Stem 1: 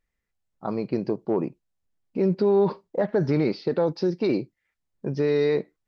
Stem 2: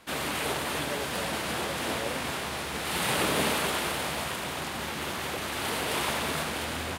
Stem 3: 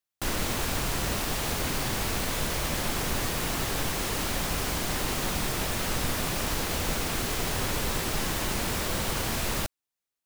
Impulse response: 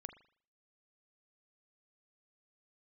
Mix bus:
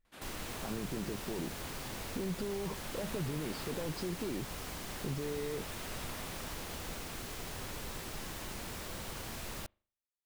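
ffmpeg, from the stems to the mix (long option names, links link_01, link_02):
-filter_complex "[0:a]alimiter=level_in=2dB:limit=-24dB:level=0:latency=1,volume=-2dB,lowshelf=frequency=240:gain=8,volume=-5.5dB[link_01];[1:a]adelay=50,volume=-19.5dB[link_02];[2:a]volume=-14dB,asplit=2[link_03][link_04];[link_04]volume=-16dB[link_05];[3:a]atrim=start_sample=2205[link_06];[link_05][link_06]afir=irnorm=-1:irlink=0[link_07];[link_01][link_02][link_03][link_07]amix=inputs=4:normalize=0,acompressor=threshold=-35dB:ratio=2"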